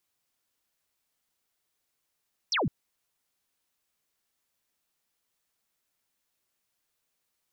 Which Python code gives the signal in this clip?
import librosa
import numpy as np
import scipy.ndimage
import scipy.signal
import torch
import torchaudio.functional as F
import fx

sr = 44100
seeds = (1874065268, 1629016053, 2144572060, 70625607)

y = fx.laser_zap(sr, level_db=-24.0, start_hz=6100.0, end_hz=110.0, length_s=0.16, wave='sine')